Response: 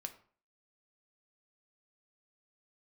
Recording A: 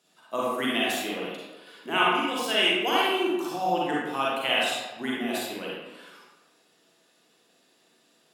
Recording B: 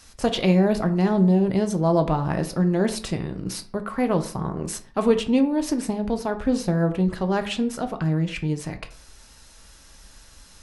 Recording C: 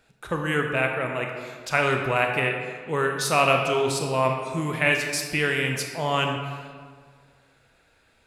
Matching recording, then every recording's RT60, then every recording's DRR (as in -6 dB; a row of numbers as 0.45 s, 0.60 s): B; 1.2 s, 0.45 s, 1.7 s; -6.0 dB, 6.5 dB, 2.0 dB